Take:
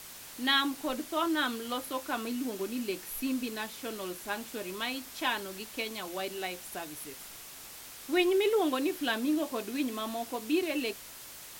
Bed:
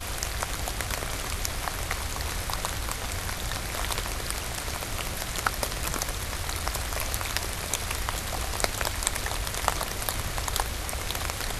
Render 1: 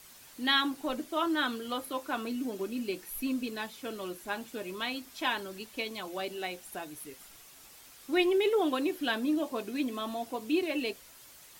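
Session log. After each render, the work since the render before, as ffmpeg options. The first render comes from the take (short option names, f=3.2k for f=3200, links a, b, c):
-af "afftdn=nr=8:nf=-47"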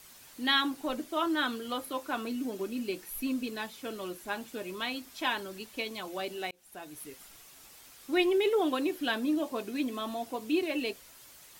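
-filter_complex "[0:a]asplit=2[a][b];[a]atrim=end=6.51,asetpts=PTS-STARTPTS,afade=t=out:st=6.506:d=0.004:c=hsin[c];[b]atrim=start=6.51,asetpts=PTS-STARTPTS,afade=t=in:d=0.5[d];[c][d]concat=n=2:v=0:a=1"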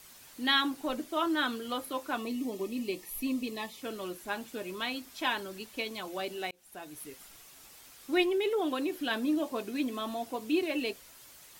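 -filter_complex "[0:a]asplit=3[a][b][c];[a]afade=t=out:st=2.17:d=0.02[d];[b]asuperstop=centerf=1500:order=20:qfactor=3.6,afade=t=in:st=2.17:d=0.02,afade=t=out:st=3.8:d=0.02[e];[c]afade=t=in:st=3.8:d=0.02[f];[d][e][f]amix=inputs=3:normalize=0,asettb=1/sr,asplit=3[g][h][i];[g]atrim=end=8.234[j];[h]atrim=start=8.23:end=9.11,asetpts=PTS-STARTPTS,afade=t=in:d=0.004:c=qsin,afade=t=out:st=0.876:d=0.004:c=qsin,acompressor=threshold=-31dB:ratio=1.5:attack=3.2:release=140:knee=1:detection=peak[k];[i]atrim=start=9.106[l];[j][k]acrossfade=d=0.004:c1=hsin:c2=qsin[m];[m][l]acrossfade=d=0.004:c1=qsin:c2=hsin"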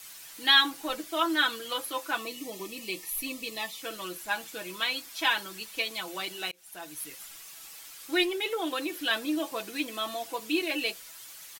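-af "tiltshelf=f=790:g=-6,aecho=1:1:6.1:0.68"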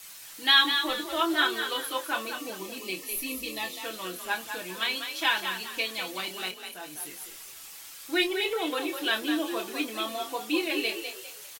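-filter_complex "[0:a]asplit=2[a][b];[b]adelay=27,volume=-8dB[c];[a][c]amix=inputs=2:normalize=0,asplit=5[d][e][f][g][h];[e]adelay=201,afreqshift=42,volume=-7.5dB[i];[f]adelay=402,afreqshift=84,volume=-16.9dB[j];[g]adelay=603,afreqshift=126,volume=-26.2dB[k];[h]adelay=804,afreqshift=168,volume=-35.6dB[l];[d][i][j][k][l]amix=inputs=5:normalize=0"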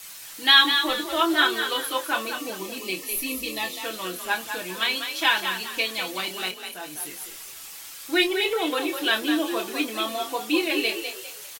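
-af "volume=4.5dB"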